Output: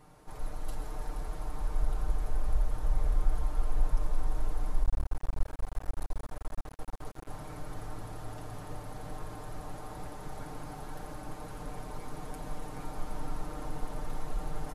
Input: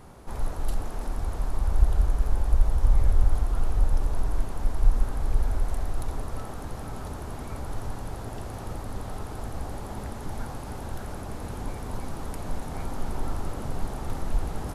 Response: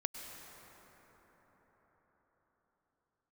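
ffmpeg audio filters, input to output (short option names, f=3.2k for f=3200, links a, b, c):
-filter_complex "[0:a]aecho=1:1:6.6:0.77,asplit=2[a][b];[b]adelay=477,lowpass=f=4k:p=1,volume=-8dB,asplit=2[c][d];[d]adelay=477,lowpass=f=4k:p=1,volume=0.31,asplit=2[e][f];[f]adelay=477,lowpass=f=4k:p=1,volume=0.31,asplit=2[g][h];[h]adelay=477,lowpass=f=4k:p=1,volume=0.31[i];[a][c][e][g][i]amix=inputs=5:normalize=0[j];[1:a]atrim=start_sample=2205[k];[j][k]afir=irnorm=-1:irlink=0,asplit=3[l][m][n];[l]afade=t=out:st=4.83:d=0.02[o];[m]aeval=exprs='max(val(0),0)':c=same,afade=t=in:st=4.83:d=0.02,afade=t=out:st=7.28:d=0.02[p];[n]afade=t=in:st=7.28:d=0.02[q];[o][p][q]amix=inputs=3:normalize=0,lowshelf=f=250:g=-3.5,volume=-8dB"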